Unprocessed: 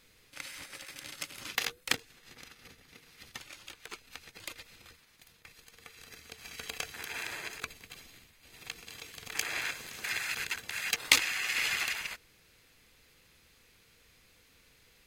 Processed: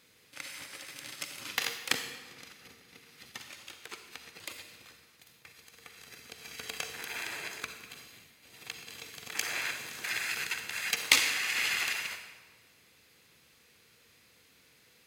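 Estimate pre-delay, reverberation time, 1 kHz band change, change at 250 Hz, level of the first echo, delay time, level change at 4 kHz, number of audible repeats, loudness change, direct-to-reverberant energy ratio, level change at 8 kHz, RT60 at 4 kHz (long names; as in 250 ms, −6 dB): 37 ms, 1.3 s, +1.0 dB, +0.5 dB, no echo audible, no echo audible, +1.0 dB, no echo audible, +1.0 dB, 6.5 dB, +1.0 dB, 1.0 s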